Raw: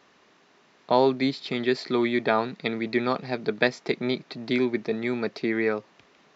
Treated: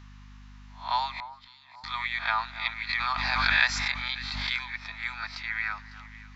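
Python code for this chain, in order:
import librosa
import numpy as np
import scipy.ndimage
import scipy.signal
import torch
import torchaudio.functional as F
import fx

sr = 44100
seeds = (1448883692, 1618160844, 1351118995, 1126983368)

y = fx.spec_swells(x, sr, rise_s=0.34)
y = scipy.signal.sosfilt(scipy.signal.butter(8, 880.0, 'highpass', fs=sr, output='sos'), y)
y = fx.add_hum(y, sr, base_hz=50, snr_db=15)
y = fx.gate_flip(y, sr, shuts_db=-25.0, range_db=-29, at=(1.07, 1.84))
y = fx.echo_alternate(y, sr, ms=276, hz=1600.0, feedback_pct=59, wet_db=-13.5)
y = fx.pre_swell(y, sr, db_per_s=21.0, at=(2.89, 4.6))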